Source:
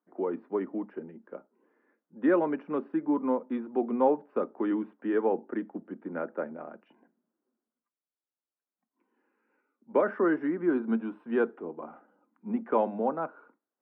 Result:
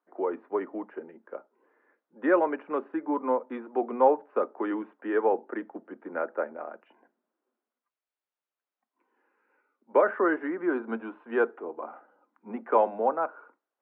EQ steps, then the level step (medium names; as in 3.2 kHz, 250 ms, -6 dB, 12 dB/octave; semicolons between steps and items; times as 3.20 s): band-pass 470–2700 Hz; +5.5 dB